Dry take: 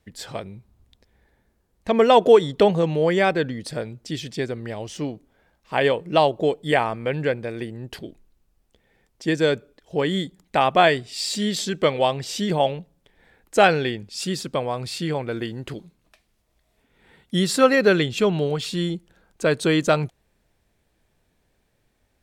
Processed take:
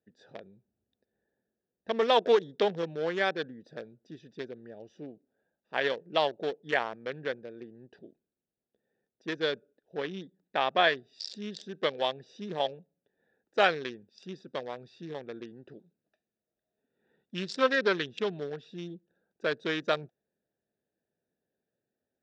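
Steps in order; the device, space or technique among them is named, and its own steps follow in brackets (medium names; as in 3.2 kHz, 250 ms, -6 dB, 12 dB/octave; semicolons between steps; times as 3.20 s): local Wiener filter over 41 samples; 9.37–10.96 s: low-pass 5.8 kHz 12 dB/octave; full-range speaker at full volume (loudspeaker Doppler distortion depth 0.16 ms; cabinet simulation 260–6700 Hz, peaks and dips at 300 Hz -4 dB, 1.7 kHz +7 dB, 3.6 kHz +9 dB, 5.5 kHz +10 dB); trim -9 dB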